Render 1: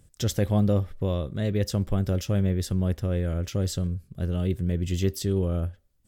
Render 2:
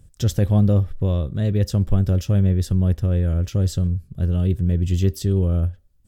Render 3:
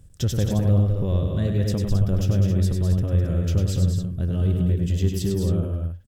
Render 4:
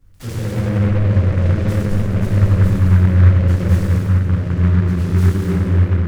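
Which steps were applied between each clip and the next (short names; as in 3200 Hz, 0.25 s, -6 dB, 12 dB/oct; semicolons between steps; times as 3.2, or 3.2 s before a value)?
low shelf 170 Hz +10.5 dB; notch 2100 Hz, Q 14
compressor 2.5:1, threshold -20 dBFS, peak gain reduction 6.5 dB; on a send: loudspeakers at several distances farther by 34 m -5 dB, 71 m -6 dB, 92 m -8 dB
reverb RT60 3.3 s, pre-delay 4 ms, DRR -15.5 dB; noise-modulated delay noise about 1300 Hz, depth 0.092 ms; gain -14 dB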